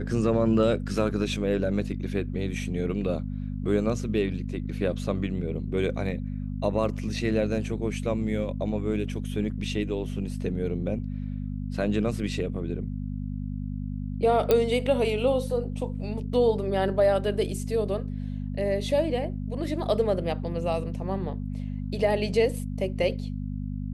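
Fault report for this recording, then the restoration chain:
mains hum 50 Hz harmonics 5 −32 dBFS
0:14.51: click −9 dBFS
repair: click removal
hum removal 50 Hz, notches 5

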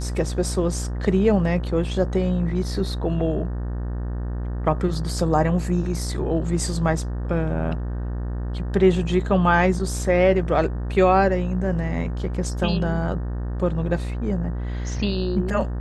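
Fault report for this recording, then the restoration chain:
mains buzz 60 Hz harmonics 31 −27 dBFS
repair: hum removal 60 Hz, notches 31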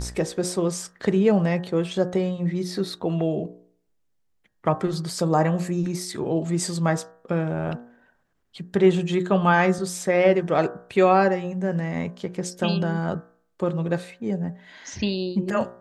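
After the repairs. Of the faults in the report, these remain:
none of them is left

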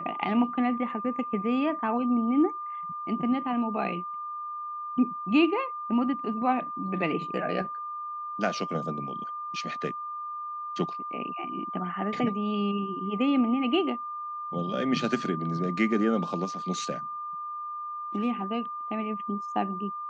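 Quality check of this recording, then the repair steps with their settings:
whistle 1,200 Hz −33 dBFS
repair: notch filter 1,200 Hz, Q 30

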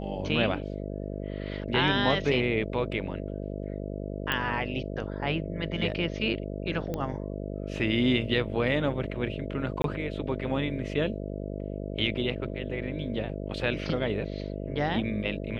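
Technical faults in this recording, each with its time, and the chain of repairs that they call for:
mains buzz 50 Hz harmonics 13 −35 dBFS
0:04.32: click −13 dBFS
0:06.94: click −19 dBFS
0:09.82–0:09.84: drop-out 22 ms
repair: click removal
hum removal 50 Hz, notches 13
repair the gap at 0:09.82, 22 ms

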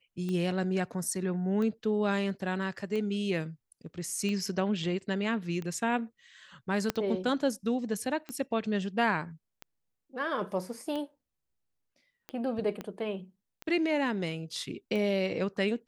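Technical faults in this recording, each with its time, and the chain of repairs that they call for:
scratch tick 45 rpm −24 dBFS
0:06.90: click −13 dBFS
0:12.81: click −23 dBFS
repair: click removal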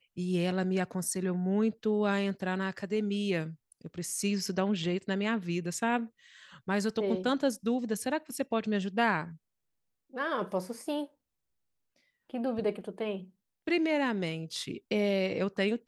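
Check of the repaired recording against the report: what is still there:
0:06.90: click
0:12.81: click

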